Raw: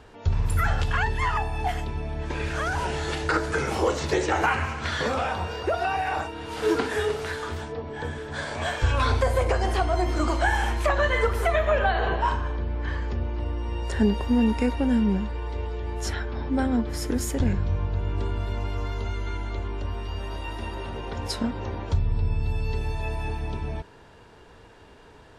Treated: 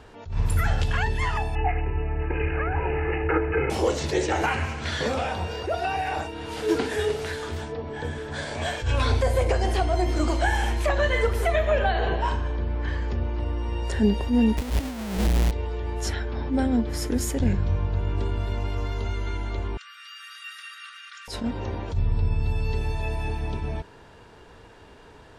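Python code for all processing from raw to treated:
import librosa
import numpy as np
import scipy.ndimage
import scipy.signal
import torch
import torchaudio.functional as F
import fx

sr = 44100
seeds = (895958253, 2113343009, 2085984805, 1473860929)

y = fx.chain(x, sr, fx.resample_bad(factor=8, down='none', up='filtered'),
    fx.comb(ms=2.4, depth=0.61), at=(1.55, 3.7))
y = fx.chain(y, sr, fx.halfwave_hold(),
    fx.peak_eq(hz=160.0, db=-2.5, octaves=0.33),
    fx.over_compress(threshold_db=-24.0, ratio=-0.5), at=(14.57, 15.51))
y = fx.chain(y, sr, fx.brickwall_highpass(low_hz=1100.0),
    fx.high_shelf(hz=6600.0, db=4.5), at=(19.77, 21.28))
y = fx.dynamic_eq(y, sr, hz=1200.0, q=1.6, threshold_db=-42.0, ratio=4.0, max_db=-7)
y = fx.attack_slew(y, sr, db_per_s=140.0)
y = y * librosa.db_to_amplitude(1.5)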